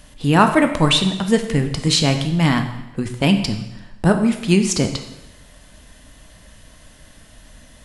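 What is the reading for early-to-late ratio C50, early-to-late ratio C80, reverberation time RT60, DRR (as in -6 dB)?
9.0 dB, 11.0 dB, 1.0 s, 6.0 dB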